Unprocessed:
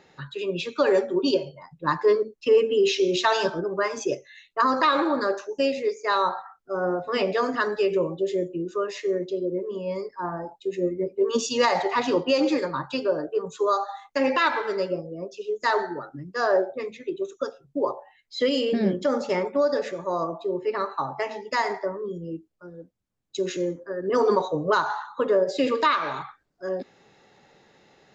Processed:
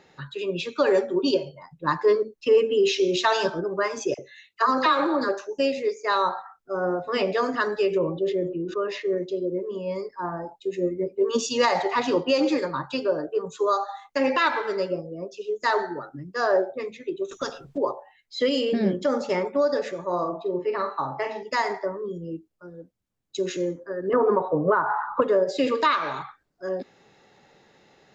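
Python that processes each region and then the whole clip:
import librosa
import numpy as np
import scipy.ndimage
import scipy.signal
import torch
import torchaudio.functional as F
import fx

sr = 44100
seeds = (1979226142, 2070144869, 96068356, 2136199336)

y = fx.chain(x, sr, fx.highpass(hz=59.0, slope=12),
    fx.dispersion(late='lows', ms=47.0, hz=1200.0), at=(4.14, 5.29))
y = fx.chain(y, sr, fx.air_absorb(metres=190.0),
    fx.sustainer(db_per_s=71.0), at=(7.98, 9.18))
y = fx.chain(y, sr, fx.high_shelf(hz=6300.0, db=-10.0),
    fx.spectral_comp(ratio=2.0), at=(17.31, 17.78))
y = fx.chain(y, sr, fx.air_absorb(metres=100.0),
    fx.doubler(ms=45.0, db=-7), at=(20.05, 21.43))
y = fx.chain(y, sr, fx.lowpass(hz=1800.0, slope=24),
    fx.band_squash(depth_pct=100), at=(24.13, 25.22))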